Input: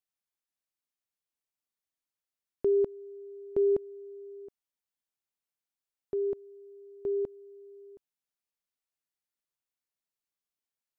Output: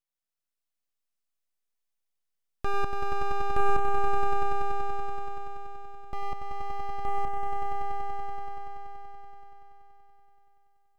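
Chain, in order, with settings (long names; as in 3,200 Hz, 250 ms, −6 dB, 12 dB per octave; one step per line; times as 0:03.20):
stylus tracing distortion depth 0.28 ms
full-wave rectification
echo that builds up and dies away 95 ms, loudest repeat 5, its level −8 dB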